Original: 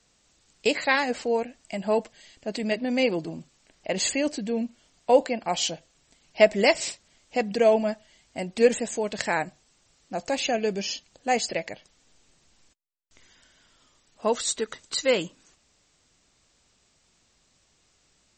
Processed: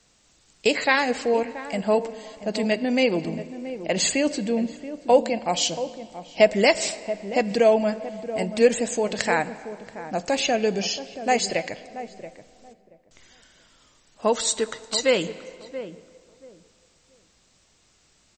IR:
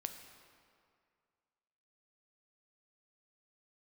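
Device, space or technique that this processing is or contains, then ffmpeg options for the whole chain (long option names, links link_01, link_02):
ducked reverb: -filter_complex "[0:a]asplit=3[link_01][link_02][link_03];[1:a]atrim=start_sample=2205[link_04];[link_02][link_04]afir=irnorm=-1:irlink=0[link_05];[link_03]apad=whole_len=810218[link_06];[link_05][link_06]sidechaincompress=threshold=-24dB:ratio=8:attack=48:release=173,volume=-2.5dB[link_07];[link_01][link_07]amix=inputs=2:normalize=0,asettb=1/sr,asplit=3[link_08][link_09][link_10];[link_08]atrim=end=5.174[link_11];[link_09]atrim=start=5.17:end=6.45,asetpts=PTS-STARTPTS,afade=type=in:duration=0.004:curve=qsin,afade=type=out:start_time=1.276:duration=0.004:curve=qsin,equalizer=frequency=1500:width=1.6:gain=-5[link_12];[link_10]atrim=start=6.446[link_13];[link_11][link_12]acrossfade=duration=0.004:curve1=hsin:curve2=qsin[link_14];[link_14][link_13]acrossfade=duration=0.004:curve1=qsin:curve2=hsin,asplit=2[link_15][link_16];[link_16]adelay=679,lowpass=frequency=840:poles=1,volume=-11dB,asplit=2[link_17][link_18];[link_18]adelay=679,lowpass=frequency=840:poles=1,volume=0.22,asplit=2[link_19][link_20];[link_20]adelay=679,lowpass=frequency=840:poles=1,volume=0.22[link_21];[link_15][link_17][link_19][link_21]amix=inputs=4:normalize=0"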